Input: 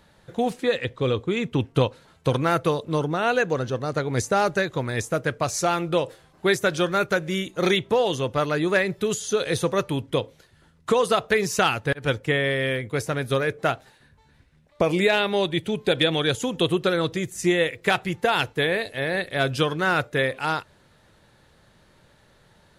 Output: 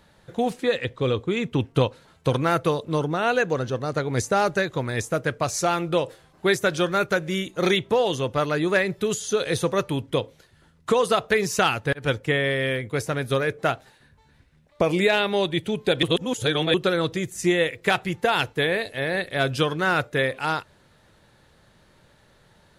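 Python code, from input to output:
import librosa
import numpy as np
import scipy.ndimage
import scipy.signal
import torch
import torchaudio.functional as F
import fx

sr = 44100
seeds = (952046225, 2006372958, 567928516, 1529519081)

y = fx.edit(x, sr, fx.reverse_span(start_s=16.03, length_s=0.71), tone=tone)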